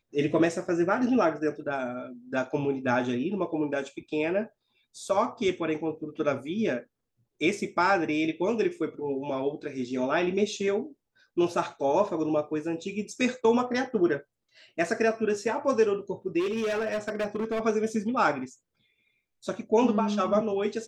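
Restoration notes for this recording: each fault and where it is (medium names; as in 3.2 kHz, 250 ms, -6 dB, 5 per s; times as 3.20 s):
16.39–17.61 s: clipped -25 dBFS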